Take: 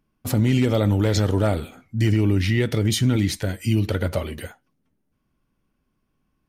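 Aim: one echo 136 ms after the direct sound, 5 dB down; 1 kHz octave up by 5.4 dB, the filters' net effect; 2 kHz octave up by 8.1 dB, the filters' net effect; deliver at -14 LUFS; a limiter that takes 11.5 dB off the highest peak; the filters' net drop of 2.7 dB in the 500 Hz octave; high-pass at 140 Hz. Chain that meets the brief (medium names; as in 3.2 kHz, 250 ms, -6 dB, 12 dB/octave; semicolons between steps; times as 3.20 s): high-pass 140 Hz; peaking EQ 500 Hz -5.5 dB; peaking EQ 1 kHz +6.5 dB; peaking EQ 2 kHz +8 dB; peak limiter -18.5 dBFS; delay 136 ms -5 dB; trim +14 dB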